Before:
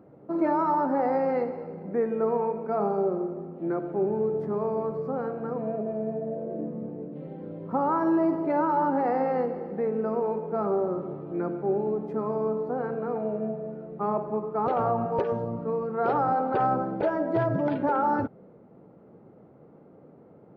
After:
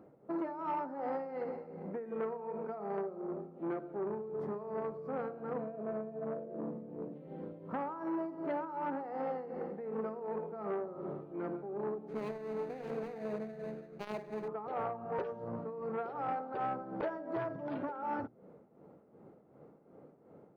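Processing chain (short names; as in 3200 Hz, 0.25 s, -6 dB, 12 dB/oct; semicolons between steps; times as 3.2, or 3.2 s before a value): 12.08–14.48 median filter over 41 samples; bell 95 Hz -4 dB 2.1 oct; notches 60/120/180/240/300/360 Hz; compressor 6:1, threshold -29 dBFS, peak gain reduction 8.5 dB; tremolo 2.7 Hz, depth 67%; core saturation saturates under 790 Hz; gain -2 dB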